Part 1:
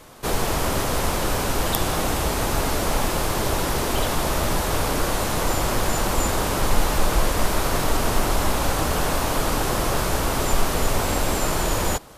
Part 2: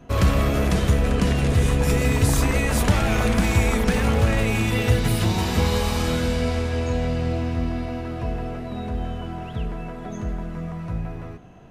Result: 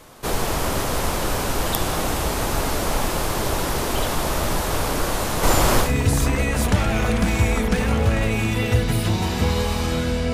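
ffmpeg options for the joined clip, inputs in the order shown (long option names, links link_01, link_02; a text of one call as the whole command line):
ffmpeg -i cue0.wav -i cue1.wav -filter_complex "[0:a]asettb=1/sr,asplit=3[link_01][link_02][link_03];[link_01]atrim=end=5.434[link_04];[link_02]atrim=start=5.43:end=5.93,asetpts=PTS-STARTPTS,afade=type=in:duration=0.004:curve=qsin,afade=type=out:start_time=0.496:duration=0.004:curve=qsin,acontrast=45[link_05];[link_03]atrim=start=5.926[link_06];[link_04][link_05]acrossfade=duration=0.004:curve1=hsin:curve2=qsin[link_07];[link_07][link_06]acrossfade=duration=0.004:curve1=qsin:curve2=hsin,apad=whole_dur=10.33,atrim=end=10.33,atrim=end=5.93,asetpts=PTS-STARTPTS[link_08];[1:a]atrim=start=1.95:end=6.49,asetpts=PTS-STARTPTS[link_09];[link_08][link_09]acrossfade=duration=0.14:curve1=tri:curve2=tri" out.wav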